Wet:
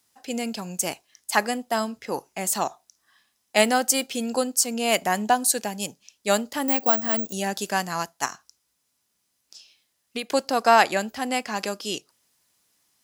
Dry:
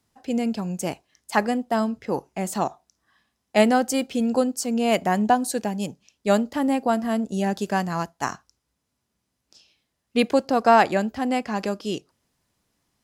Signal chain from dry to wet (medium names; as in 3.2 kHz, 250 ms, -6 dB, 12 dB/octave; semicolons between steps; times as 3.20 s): tilt EQ +3 dB/octave; 6.68–7.33 s: careless resampling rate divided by 2×, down filtered, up zero stuff; 8.25–10.30 s: compression 5:1, threshold -29 dBFS, peak gain reduction 12.5 dB